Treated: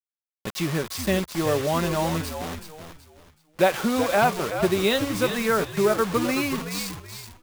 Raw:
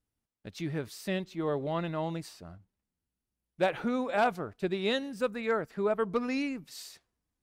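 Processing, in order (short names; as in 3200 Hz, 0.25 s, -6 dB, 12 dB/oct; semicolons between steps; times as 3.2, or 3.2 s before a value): in parallel at +3 dB: compressor 6:1, threshold -35 dBFS, peak gain reduction 12.5 dB; on the sum: whine 1100 Hz -50 dBFS; comb 5.2 ms, depth 30%; bit-crush 6-bit; low shelf 230 Hz -3.5 dB; on a send: frequency-shifting echo 0.376 s, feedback 31%, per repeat -80 Hz, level -8.5 dB; on the sum: gain +4 dB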